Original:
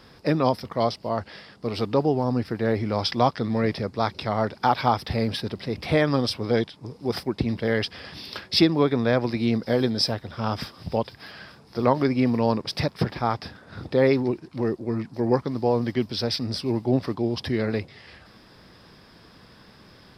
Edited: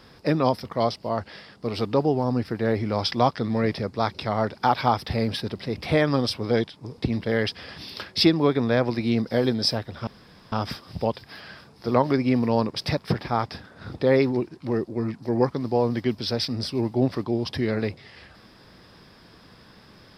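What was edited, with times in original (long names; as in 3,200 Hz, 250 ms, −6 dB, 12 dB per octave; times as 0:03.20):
0:06.98–0:07.34: remove
0:10.43: splice in room tone 0.45 s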